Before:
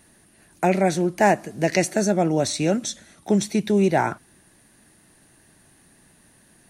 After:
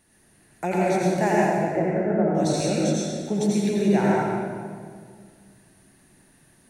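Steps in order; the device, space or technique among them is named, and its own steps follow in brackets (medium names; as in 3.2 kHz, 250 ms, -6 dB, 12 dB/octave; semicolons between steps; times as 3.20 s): 1.46–2.35 s: inverse Chebyshev low-pass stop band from 5.3 kHz, stop band 60 dB; stairwell (reverberation RT60 2.0 s, pre-delay 78 ms, DRR -5.5 dB); trim -8 dB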